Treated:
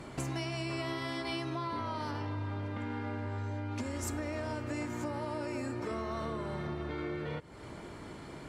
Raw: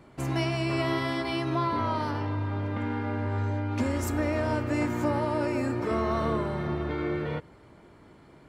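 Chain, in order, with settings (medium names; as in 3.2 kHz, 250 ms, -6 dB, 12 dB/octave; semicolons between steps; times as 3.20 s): treble shelf 6.1 kHz -9.5 dB; compression 6:1, threshold -43 dBFS, peak gain reduction 18.5 dB; peaking EQ 8.3 kHz +13 dB 2 oct; trim +7 dB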